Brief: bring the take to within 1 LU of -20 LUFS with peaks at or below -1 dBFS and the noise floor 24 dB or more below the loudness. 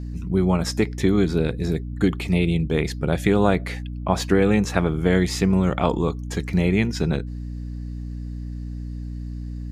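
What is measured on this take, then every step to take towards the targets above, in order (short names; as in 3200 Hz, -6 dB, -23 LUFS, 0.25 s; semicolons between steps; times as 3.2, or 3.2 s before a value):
hum 60 Hz; harmonics up to 300 Hz; hum level -29 dBFS; loudness -22.0 LUFS; peak -3.5 dBFS; loudness target -20.0 LUFS
-> notches 60/120/180/240/300 Hz; gain +2 dB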